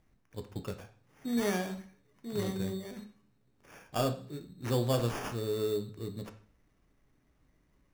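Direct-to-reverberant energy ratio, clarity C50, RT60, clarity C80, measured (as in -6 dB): 6.5 dB, 12.5 dB, 0.45 s, 16.5 dB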